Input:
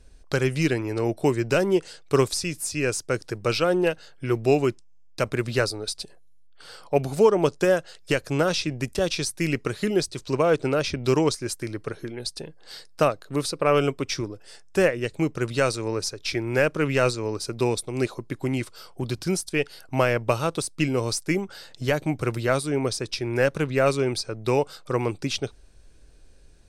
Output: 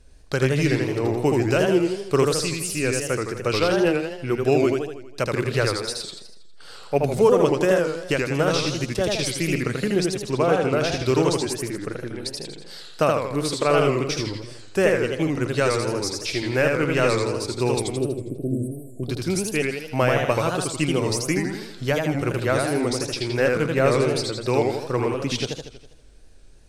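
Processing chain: spectral selection erased 17.97–19.03 s, 720–7800 Hz; modulated delay 81 ms, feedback 54%, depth 178 cents, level -3 dB

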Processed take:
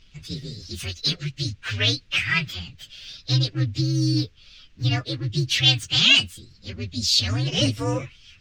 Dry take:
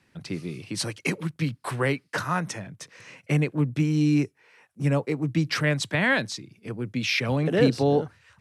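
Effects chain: frequency axis rescaled in octaves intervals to 128%; added noise brown -58 dBFS; FFT filter 100 Hz 0 dB, 870 Hz -12 dB, 1.3 kHz -1 dB, 2.7 kHz +11 dB, 6.3 kHz +7 dB, 11 kHz -14 dB; trim +4 dB

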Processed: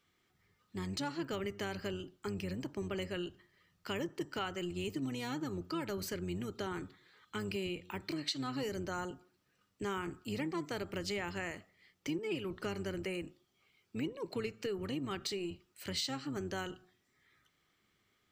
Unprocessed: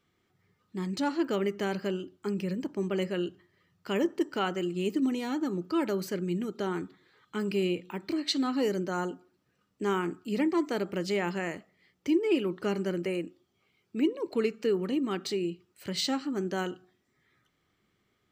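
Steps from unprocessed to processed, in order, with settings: octave divider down 1 oct, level -5 dB; tilt shelf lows -4 dB, about 940 Hz; compression 3:1, threshold -34 dBFS, peak gain reduction 10 dB; trim -2 dB

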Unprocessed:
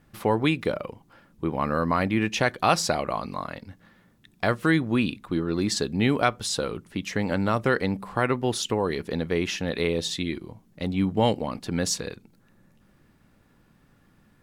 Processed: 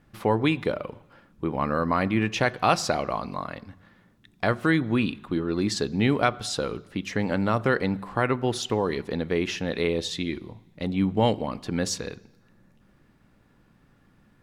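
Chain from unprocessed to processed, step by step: treble shelf 7.1 kHz -7.5 dB; on a send: reverberation RT60 1.0 s, pre-delay 3 ms, DRR 19.5 dB

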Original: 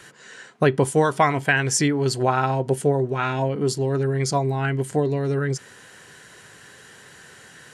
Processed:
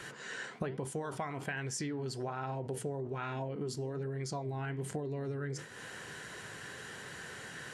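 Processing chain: treble shelf 4.6 kHz -5.5 dB; in parallel at +2.5 dB: peak limiter -16.5 dBFS, peak gain reduction 9.5 dB; on the sum: compression 12:1, threshold -29 dBFS, peak gain reduction 20 dB; flange 1.2 Hz, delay 5.6 ms, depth 9 ms, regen -83%; decay stretcher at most 95 dB/s; trim -1.5 dB

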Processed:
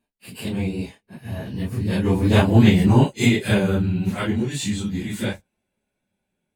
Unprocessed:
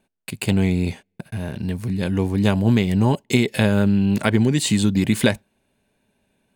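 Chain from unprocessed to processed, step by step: phase randomisation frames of 100 ms; Doppler pass-by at 2.55 s, 18 m/s, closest 12 m; trim +4 dB

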